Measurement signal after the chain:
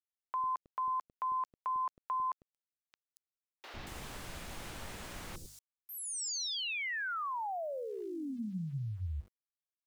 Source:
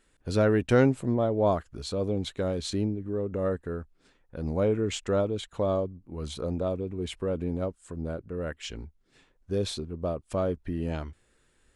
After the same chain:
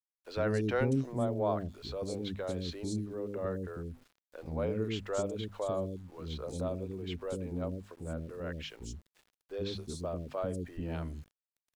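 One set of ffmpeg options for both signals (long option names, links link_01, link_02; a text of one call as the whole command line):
ffmpeg -i in.wav -filter_complex "[0:a]acrossover=split=9700[link_01][link_02];[link_02]acompressor=threshold=-56dB:ratio=4:attack=1:release=60[link_03];[link_01][link_03]amix=inputs=2:normalize=0,bandreject=frequency=50:width_type=h:width=6,bandreject=frequency=100:width_type=h:width=6,bandreject=frequency=150:width_type=h:width=6,bandreject=frequency=200:width_type=h:width=6,bandreject=frequency=250:width_type=h:width=6,asplit=2[link_04][link_05];[link_05]acompressor=threshold=-39dB:ratio=6,volume=-1.5dB[link_06];[link_04][link_06]amix=inputs=2:normalize=0,acrossover=split=400|5000[link_07][link_08][link_09];[link_07]adelay=100[link_10];[link_09]adelay=230[link_11];[link_10][link_08][link_11]amix=inputs=3:normalize=0,aeval=exprs='val(0)*gte(abs(val(0)),0.00266)':channel_layout=same,volume=-6.5dB" out.wav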